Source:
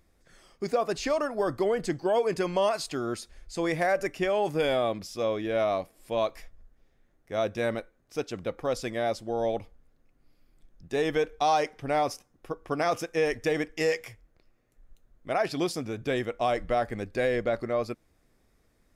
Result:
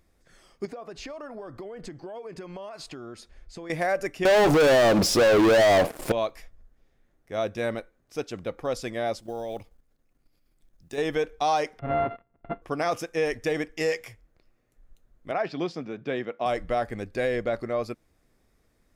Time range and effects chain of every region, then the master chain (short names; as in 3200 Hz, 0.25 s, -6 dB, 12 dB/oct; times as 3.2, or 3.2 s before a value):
0.65–3.7 LPF 3000 Hz 6 dB/oct + compressor 12:1, threshold -35 dBFS
4.25–6.12 bell 500 Hz +11.5 dB 2.6 oct + compressor 4:1, threshold -23 dBFS + sample leveller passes 5
9.2–10.98 block floating point 7-bit + high shelf 4200 Hz +6.5 dB + level quantiser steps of 11 dB
11.79–12.62 sample sorter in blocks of 64 samples + sample leveller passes 1 + Gaussian blur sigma 4.4 samples
15.31–16.46 Chebyshev high-pass 150 Hz, order 3 + air absorption 180 m
whole clip: dry